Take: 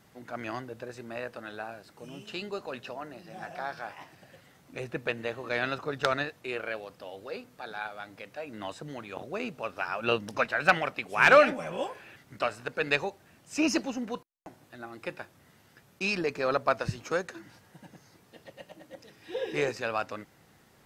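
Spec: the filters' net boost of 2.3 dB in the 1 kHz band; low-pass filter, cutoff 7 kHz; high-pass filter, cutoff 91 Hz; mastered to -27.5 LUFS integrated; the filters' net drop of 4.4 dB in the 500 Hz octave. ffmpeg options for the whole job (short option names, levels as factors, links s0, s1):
-af "highpass=91,lowpass=7000,equalizer=f=500:t=o:g=-7,equalizer=f=1000:t=o:g=5,volume=1.41"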